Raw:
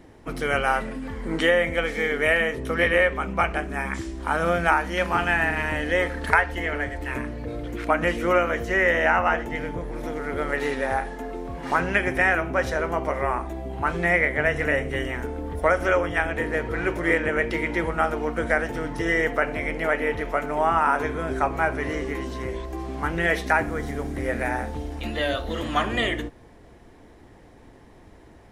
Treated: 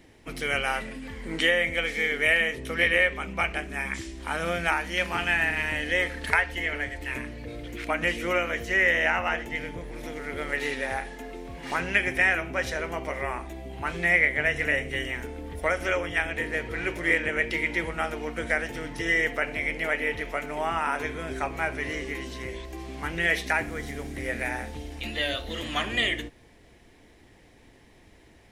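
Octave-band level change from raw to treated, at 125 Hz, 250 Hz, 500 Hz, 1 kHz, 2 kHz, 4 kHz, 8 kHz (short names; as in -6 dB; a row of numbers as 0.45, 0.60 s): -6.0, -6.0, -6.5, -7.5, -0.5, +2.5, +1.5 dB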